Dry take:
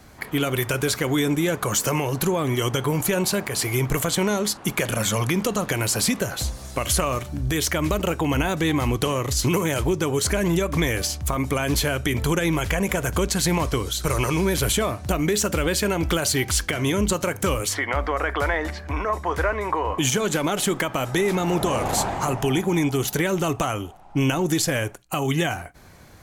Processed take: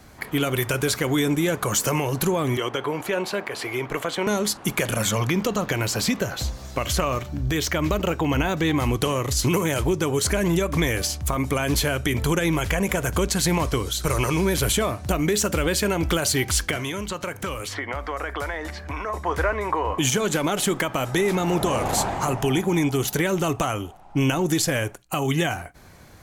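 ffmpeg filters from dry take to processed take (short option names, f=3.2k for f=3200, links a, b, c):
-filter_complex "[0:a]asettb=1/sr,asplit=3[a][b][c];[a]atrim=end=2.574[d];[b]atrim=start=2.57:end=4.27,asetpts=PTS-STARTPTS,afade=t=in:d=0.004:c=qsin,afade=t=out:st=1.696:d=0.004:c=qsin,acrossover=split=280 3900:gain=0.2 1 0.178[e][f][g];[e][f][g]amix=inputs=3:normalize=0[h];[c]atrim=start=4.266[i];[d][h]acrossfade=d=0.004:c1=hsin:c2=qsin[j];[j][i]acrossfade=d=0.004:c1=qsin:c2=hsin,asettb=1/sr,asplit=3[k][l][m];[k]atrim=end=5.114[n];[l]atrim=start=5.11:end=8.78,asetpts=PTS-STARTPTS,afade=t=in:d=0.004:c=qsin,afade=t=out:st=3.666:d=0.004:c=qsin,equalizer=f=9.9k:w=1.7:g=-11.5[o];[m]atrim=start=8.776[p];[n][o]acrossfade=d=0.004:c1=hsin:c2=qsin[q];[q][p]acrossfade=d=0.004:c1=qsin:c2=hsin,asettb=1/sr,asplit=3[r][s][t];[r]atrim=end=16.764[u];[s]atrim=start=16.76:end=19.14,asetpts=PTS-STARTPTS,afade=t=in:d=0.004:c=qsin,afade=t=out:st=2.376:d=0.004:c=qsin,acrossover=split=750|4400[v][w][x];[v]acompressor=threshold=-31dB:ratio=4[y];[w]acompressor=threshold=-30dB:ratio=4[z];[x]acompressor=threshold=-41dB:ratio=4[aa];[y][z][aa]amix=inputs=3:normalize=0[ab];[t]atrim=start=19.136[ac];[u][ab]acrossfade=d=0.004:c1=hsin:c2=qsin[ad];[ad][ac]acrossfade=d=0.004:c1=qsin:c2=hsin"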